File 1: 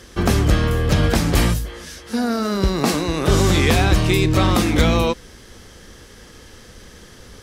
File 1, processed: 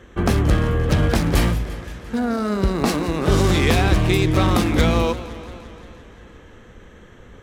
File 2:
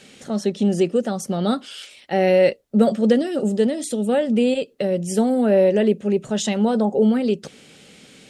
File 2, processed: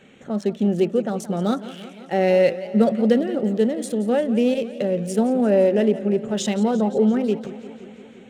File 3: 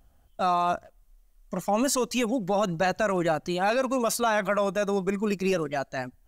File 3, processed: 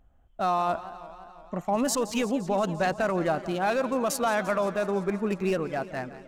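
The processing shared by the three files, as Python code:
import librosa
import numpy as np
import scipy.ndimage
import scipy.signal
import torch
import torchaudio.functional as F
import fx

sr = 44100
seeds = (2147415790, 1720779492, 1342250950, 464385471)

y = fx.wiener(x, sr, points=9)
y = fx.echo_warbled(y, sr, ms=173, feedback_pct=70, rate_hz=2.8, cents=147, wet_db=-15.5)
y = y * 10.0 ** (-1.0 / 20.0)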